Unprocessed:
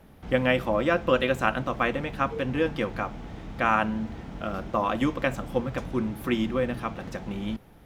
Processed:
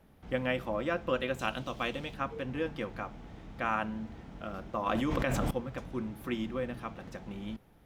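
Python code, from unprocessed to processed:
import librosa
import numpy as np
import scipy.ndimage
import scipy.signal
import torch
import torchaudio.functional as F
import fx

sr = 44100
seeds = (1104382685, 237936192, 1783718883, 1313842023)

y = fx.high_shelf_res(x, sr, hz=2500.0, db=7.5, q=1.5, at=(1.39, 2.14))
y = fx.env_flatten(y, sr, amount_pct=100, at=(4.86, 5.51))
y = y * librosa.db_to_amplitude(-8.5)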